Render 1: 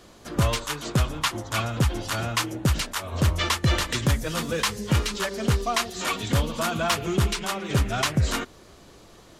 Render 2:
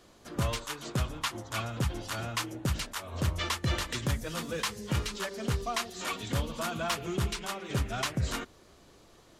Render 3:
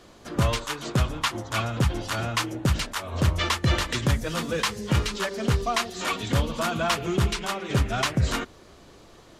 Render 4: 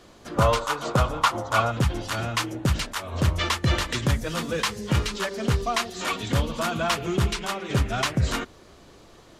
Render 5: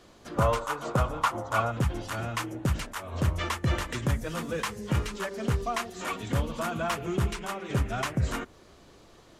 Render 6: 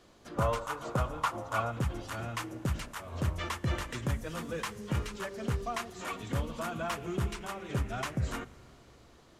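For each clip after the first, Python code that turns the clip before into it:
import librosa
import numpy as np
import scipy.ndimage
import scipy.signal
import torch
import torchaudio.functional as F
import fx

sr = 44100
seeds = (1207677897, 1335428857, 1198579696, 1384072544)

y1 = fx.hum_notches(x, sr, base_hz=50, count=4)
y1 = y1 * 10.0 ** (-7.5 / 20.0)
y2 = fx.high_shelf(y1, sr, hz=7500.0, db=-6.5)
y2 = y2 * 10.0 ** (7.5 / 20.0)
y3 = fx.spec_box(y2, sr, start_s=0.37, length_s=1.34, low_hz=440.0, high_hz=1500.0, gain_db=8)
y4 = fx.dynamic_eq(y3, sr, hz=4200.0, q=1.1, threshold_db=-44.0, ratio=4.0, max_db=-8)
y4 = y4 * 10.0 ** (-4.0 / 20.0)
y5 = fx.rev_schroeder(y4, sr, rt60_s=3.8, comb_ms=30, drr_db=19.0)
y5 = y5 * 10.0 ** (-5.0 / 20.0)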